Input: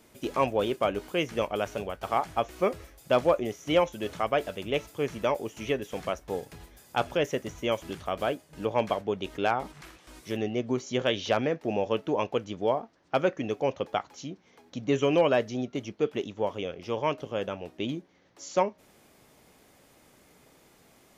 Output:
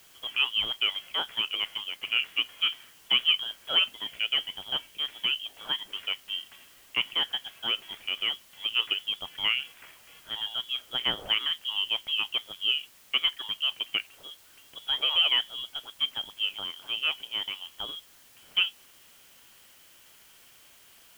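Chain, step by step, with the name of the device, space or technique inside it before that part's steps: scrambled radio voice (BPF 380–3000 Hz; inverted band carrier 3600 Hz; white noise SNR 25 dB); 4.04–5.65 bell 1200 Hz -5.5 dB 0.91 oct

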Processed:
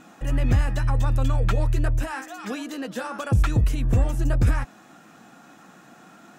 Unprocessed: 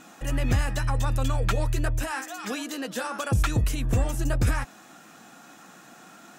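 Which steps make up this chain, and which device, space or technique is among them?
low shelf 240 Hz +4.5 dB; behind a face mask (high shelf 3500 Hz -7 dB)

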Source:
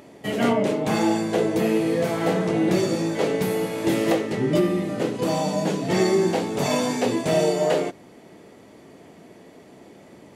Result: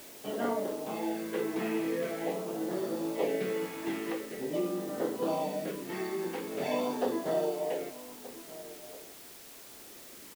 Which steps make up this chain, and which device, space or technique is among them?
shortwave radio (BPF 290–2700 Hz; tremolo 0.58 Hz, depth 49%; LFO notch sine 0.45 Hz 530–2500 Hz; white noise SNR 16 dB); outdoor echo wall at 210 m, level -16 dB; gain -5.5 dB

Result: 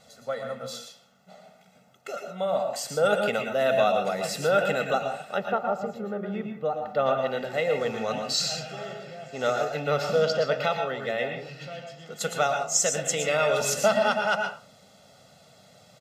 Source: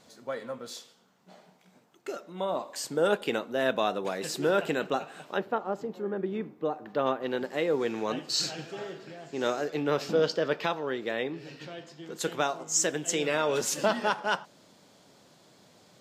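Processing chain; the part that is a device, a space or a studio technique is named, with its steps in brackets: microphone above a desk (comb 1.5 ms, depth 88%; reverb RT60 0.35 s, pre-delay 0.107 s, DRR 3.5 dB)

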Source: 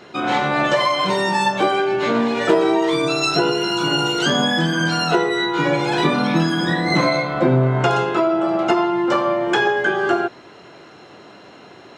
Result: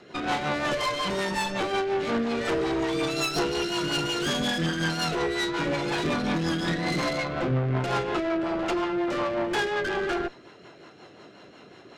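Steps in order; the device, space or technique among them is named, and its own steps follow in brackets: overdriven rotary cabinet (tube stage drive 21 dB, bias 0.7; rotary speaker horn 5.5 Hz)

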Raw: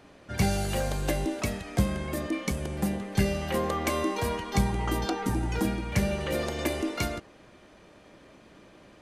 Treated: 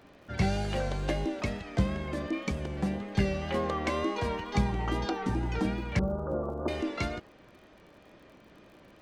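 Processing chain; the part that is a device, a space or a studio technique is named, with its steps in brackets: 5.99–6.68 steep low-pass 1400 Hz 96 dB/oct; lo-fi chain (LPF 4700 Hz 12 dB/oct; wow and flutter; crackle 52/s -48 dBFS); gain -2 dB

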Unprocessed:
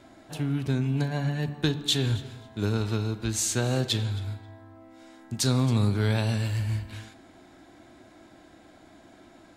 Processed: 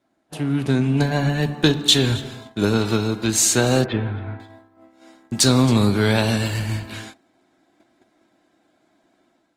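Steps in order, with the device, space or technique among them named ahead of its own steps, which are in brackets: 3.84–4.4 LPF 2100 Hz 24 dB/oct; video call (HPF 160 Hz 12 dB/oct; AGC gain up to 6 dB; gate -42 dBFS, range -20 dB; gain +4.5 dB; Opus 24 kbps 48000 Hz)

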